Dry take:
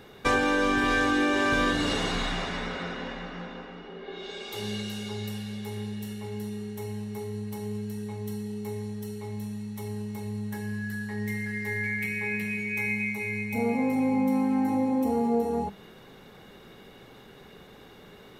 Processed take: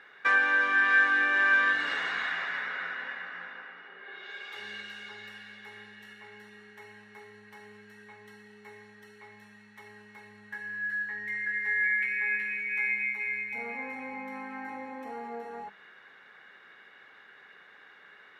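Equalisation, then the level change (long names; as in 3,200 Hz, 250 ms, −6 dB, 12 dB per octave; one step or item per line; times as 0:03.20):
resonant band-pass 1,700 Hz, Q 3.6
+7.5 dB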